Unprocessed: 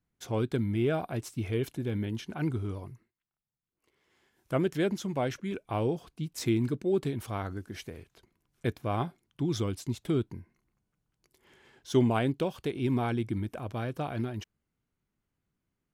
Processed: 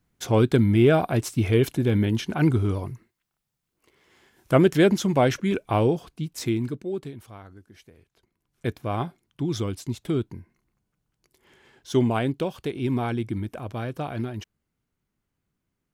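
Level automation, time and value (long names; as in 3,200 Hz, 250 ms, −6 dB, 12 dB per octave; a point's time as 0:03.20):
0:05.59 +10.5 dB
0:06.74 0 dB
0:07.41 −10 dB
0:07.95 −10 dB
0:08.69 +3 dB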